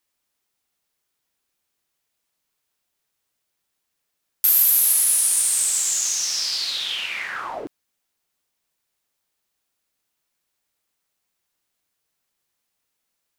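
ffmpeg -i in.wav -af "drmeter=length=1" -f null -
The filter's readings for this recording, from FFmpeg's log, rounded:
Channel 1: DR: 11.6
Overall DR: 11.6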